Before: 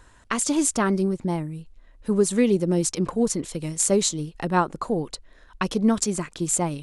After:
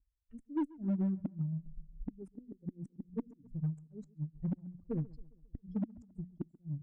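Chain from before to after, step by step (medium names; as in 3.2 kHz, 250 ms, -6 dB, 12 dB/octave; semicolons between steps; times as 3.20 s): expander on every frequency bin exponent 3; recorder AGC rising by 17 dB/s; elliptic band-stop 550–6700 Hz; amplifier tone stack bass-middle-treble 6-0-2; hum notches 60/120/180/240 Hz; compression 16:1, threshold -48 dBFS, peak gain reduction 12 dB; inverted gate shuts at -44 dBFS, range -33 dB; small resonant body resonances 270/1900/3300 Hz, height 16 dB, ringing for 30 ms; Chebyshev shaper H 8 -38 dB, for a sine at -41 dBFS; distance through air 440 m; on a send: filtered feedback delay 135 ms, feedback 52%, low-pass 2 kHz, level -21.5 dB; on the sum: trim +13.5 dB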